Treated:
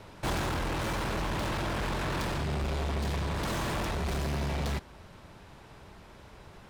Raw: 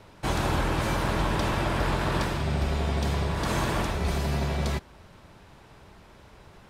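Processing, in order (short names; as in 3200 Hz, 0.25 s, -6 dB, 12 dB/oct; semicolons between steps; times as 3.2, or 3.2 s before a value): tracing distortion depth 0.04 ms; hard clip -29 dBFS, distortion -8 dB; vocal rider 0.5 s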